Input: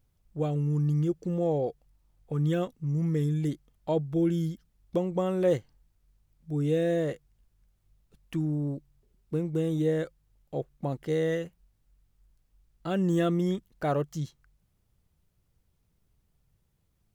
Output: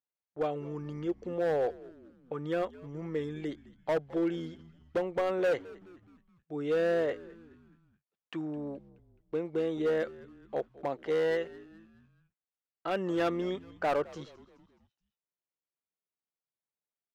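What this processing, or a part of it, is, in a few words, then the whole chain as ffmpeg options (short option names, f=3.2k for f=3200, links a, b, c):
walkie-talkie: -filter_complex "[0:a]highpass=480,lowpass=2.9k,asoftclip=type=hard:threshold=-28dB,agate=range=-22dB:threshold=-59dB:ratio=16:detection=peak,asettb=1/sr,asplit=3[a][b][c];[a]atrim=end=2.364[d];[b]atrim=start=2.36:end=3.16,asetpts=PTS-STARTPTS,afade=t=in:d=0.004:c=qsin,afade=t=out:st=0.796:d=0.004:c=qsin,equalizer=f=3.4k:t=o:w=1.8:g=-3.5[e];[c]atrim=start=3.156[f];[d][e]acrossfade=d=0.004:c1=hsin:c2=qsin[g];[g][f]acrossfade=d=0.004:c1=qsin:c2=hsin,asplit=5[h][i][j][k][l];[i]adelay=212,afreqshift=-87,volume=-20dB[m];[j]adelay=424,afreqshift=-174,volume=-26.4dB[n];[k]adelay=636,afreqshift=-261,volume=-32.8dB[o];[l]adelay=848,afreqshift=-348,volume=-39.1dB[p];[h][m][n][o][p]amix=inputs=5:normalize=0,volume=4dB"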